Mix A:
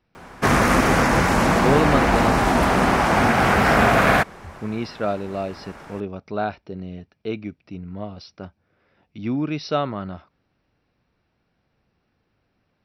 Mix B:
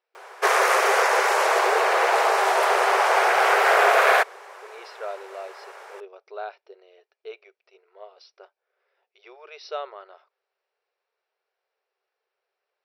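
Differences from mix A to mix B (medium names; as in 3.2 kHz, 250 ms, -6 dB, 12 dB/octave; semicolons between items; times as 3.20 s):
speech -8.5 dB; master: add brick-wall FIR high-pass 370 Hz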